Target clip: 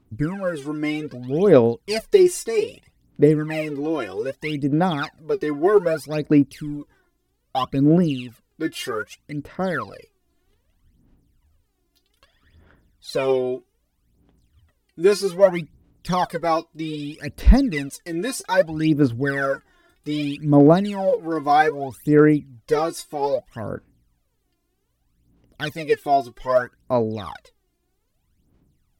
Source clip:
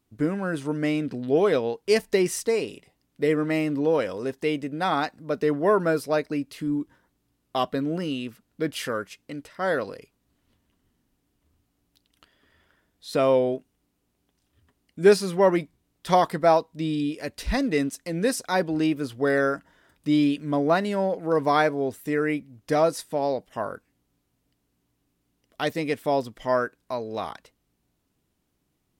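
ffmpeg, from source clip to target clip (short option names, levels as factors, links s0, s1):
-af "lowshelf=f=230:g=6.5,aphaser=in_gain=1:out_gain=1:delay=2.9:decay=0.79:speed=0.63:type=sinusoidal,volume=0.708"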